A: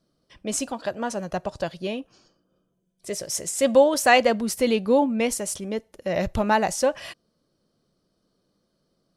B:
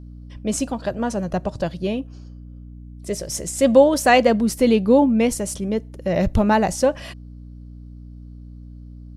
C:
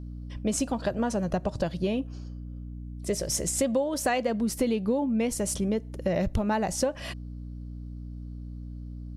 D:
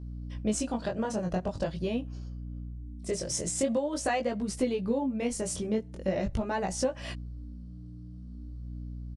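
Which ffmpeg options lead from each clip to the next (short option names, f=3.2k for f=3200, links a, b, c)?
-af "lowshelf=f=400:g=10,aeval=exprs='val(0)+0.0141*(sin(2*PI*60*n/s)+sin(2*PI*2*60*n/s)/2+sin(2*PI*3*60*n/s)/3+sin(2*PI*4*60*n/s)/4+sin(2*PI*5*60*n/s)/5)':c=same"
-af "acompressor=threshold=-23dB:ratio=8"
-af "flanger=delay=15.5:depth=7.6:speed=0.44,aresample=22050,aresample=44100"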